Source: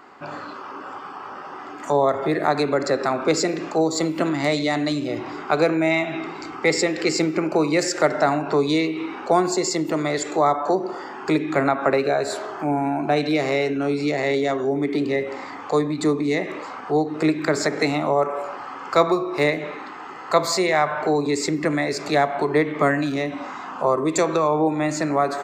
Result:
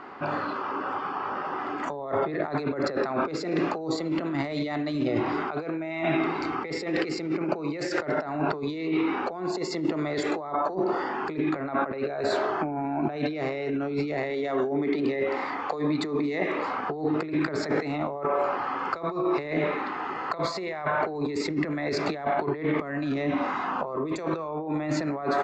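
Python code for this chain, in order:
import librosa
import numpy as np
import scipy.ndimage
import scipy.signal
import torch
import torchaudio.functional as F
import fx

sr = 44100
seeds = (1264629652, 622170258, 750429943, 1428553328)

y = fx.low_shelf(x, sr, hz=220.0, db=-9.0, at=(14.3, 16.59))
y = fx.over_compress(y, sr, threshold_db=-28.0, ratio=-1.0)
y = fx.air_absorb(y, sr, metres=190.0)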